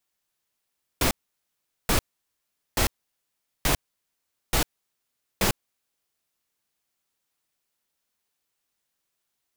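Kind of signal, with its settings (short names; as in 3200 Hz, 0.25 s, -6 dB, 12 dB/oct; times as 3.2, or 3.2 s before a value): noise bursts pink, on 0.10 s, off 0.78 s, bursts 6, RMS -21.5 dBFS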